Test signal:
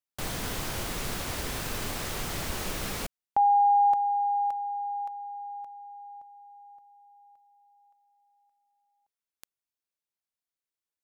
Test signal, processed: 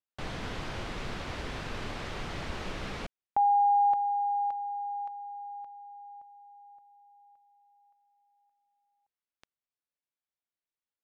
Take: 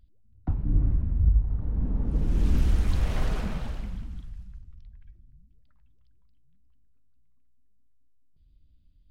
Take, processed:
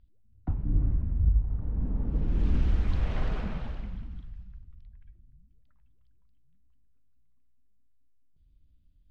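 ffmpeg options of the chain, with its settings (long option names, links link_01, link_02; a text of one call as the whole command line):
ffmpeg -i in.wav -af "lowpass=3600,volume=-2.5dB" out.wav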